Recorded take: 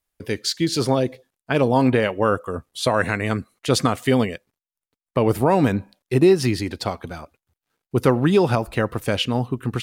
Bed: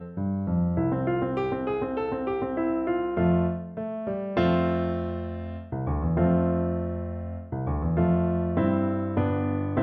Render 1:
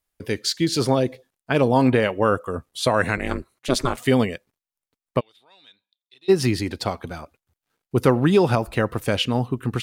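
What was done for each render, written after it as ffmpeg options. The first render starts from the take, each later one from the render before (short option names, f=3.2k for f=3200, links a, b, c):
-filter_complex "[0:a]asplit=3[a][b][c];[a]afade=t=out:st=3.16:d=0.02[d];[b]aeval=exprs='val(0)*sin(2*PI*130*n/s)':c=same,afade=t=in:st=3.16:d=0.02,afade=t=out:st=3.96:d=0.02[e];[c]afade=t=in:st=3.96:d=0.02[f];[d][e][f]amix=inputs=3:normalize=0,asplit=3[g][h][i];[g]afade=t=out:st=5.19:d=0.02[j];[h]bandpass=f=3.6k:t=q:w=18,afade=t=in:st=5.19:d=0.02,afade=t=out:st=6.28:d=0.02[k];[i]afade=t=in:st=6.28:d=0.02[l];[j][k][l]amix=inputs=3:normalize=0"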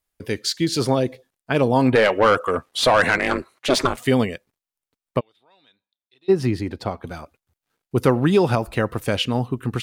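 -filter_complex "[0:a]asettb=1/sr,asplit=3[a][b][c];[a]atrim=end=1.954[d];[b]atrim=start=1.95:end=3.87,asetpts=PTS-STARTPTS,afade=t=in:d=0.004:c=qsin,afade=t=out:st=1.916:d=0.004:c=qsin,asplit=2[e][f];[f]highpass=f=720:p=1,volume=18dB,asoftclip=type=tanh:threshold=-6dB[g];[e][g]amix=inputs=2:normalize=0,lowpass=f=3.3k:p=1,volume=-6dB[h];[c]atrim=start=3.866[i];[d][h]acrossfade=d=0.004:c1=hsin:c2=qsin[j];[j][i]acrossfade=d=0.004:c1=qsin:c2=hsin,asplit=3[k][l][m];[k]afade=t=out:st=5.18:d=0.02[n];[l]highshelf=f=2.4k:g=-11.5,afade=t=in:st=5.18:d=0.02,afade=t=out:st=7.04:d=0.02[o];[m]afade=t=in:st=7.04:d=0.02[p];[n][o][p]amix=inputs=3:normalize=0"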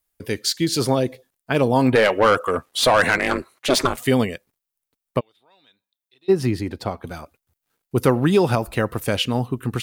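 -af "highshelf=f=10k:g=10"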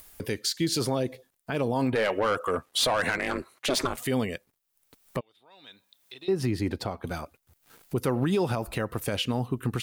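-af "acompressor=mode=upward:threshold=-33dB:ratio=2.5,alimiter=limit=-17dB:level=0:latency=1:release=220"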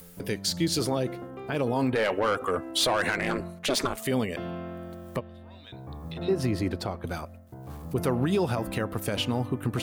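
-filter_complex "[1:a]volume=-13dB[a];[0:a][a]amix=inputs=2:normalize=0"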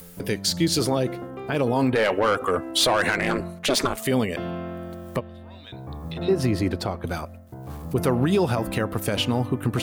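-af "volume=4.5dB"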